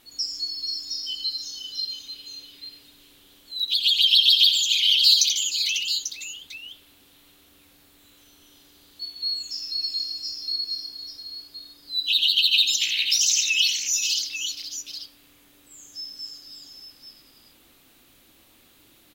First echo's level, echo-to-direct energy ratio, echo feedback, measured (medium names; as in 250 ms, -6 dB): -8.0 dB, -3.0 dB, no regular repeats